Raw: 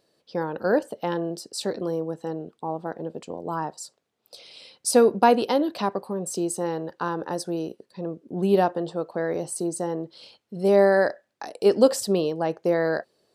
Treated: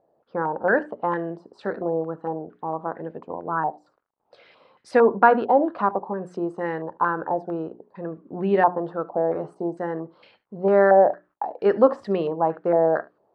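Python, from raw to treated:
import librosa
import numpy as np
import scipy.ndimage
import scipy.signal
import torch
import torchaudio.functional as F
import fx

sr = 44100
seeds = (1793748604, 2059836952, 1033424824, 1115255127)

y = fx.hum_notches(x, sr, base_hz=60, count=7)
y = fx.quant_dither(y, sr, seeds[0], bits=12, dither='none')
y = y + 10.0 ** (-21.5 / 20.0) * np.pad(y, (int(73 * sr / 1000.0), 0))[:len(y)]
y = fx.filter_held_lowpass(y, sr, hz=4.4, low_hz=770.0, high_hz=1900.0)
y = y * librosa.db_to_amplitude(-1.0)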